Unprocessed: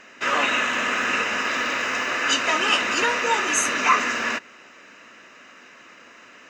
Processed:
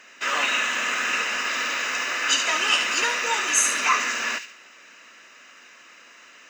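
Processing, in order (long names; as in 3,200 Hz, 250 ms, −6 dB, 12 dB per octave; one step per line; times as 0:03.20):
spectral tilt +2.5 dB per octave
on a send: delay with a high-pass on its return 71 ms, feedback 34%, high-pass 2,600 Hz, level −6 dB
on the sum: level −4 dB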